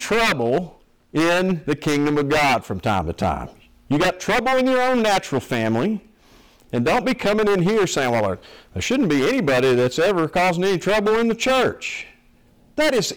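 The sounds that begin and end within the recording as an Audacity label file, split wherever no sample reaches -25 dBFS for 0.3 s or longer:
1.150000	3.450000	sound
3.910000	5.970000	sound
6.730000	8.340000	sound
8.760000	12.010000	sound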